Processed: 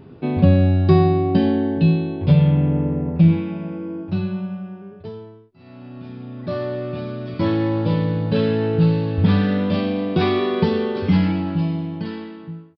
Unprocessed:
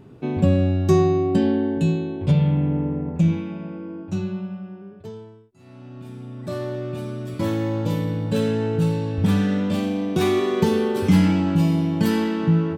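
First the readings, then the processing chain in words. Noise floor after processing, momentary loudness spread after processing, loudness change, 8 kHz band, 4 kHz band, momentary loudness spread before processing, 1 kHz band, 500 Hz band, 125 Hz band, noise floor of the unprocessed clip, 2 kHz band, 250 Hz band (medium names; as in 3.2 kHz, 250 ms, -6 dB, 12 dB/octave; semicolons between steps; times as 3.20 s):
-43 dBFS, 18 LU, +2.0 dB, under -20 dB, +1.5 dB, 16 LU, +2.5 dB, +1.0 dB, +3.0 dB, -44 dBFS, +1.5 dB, +1.5 dB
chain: fade out at the end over 2.68 s; doubling 12 ms -10.5 dB; resampled via 11.025 kHz; trim +3 dB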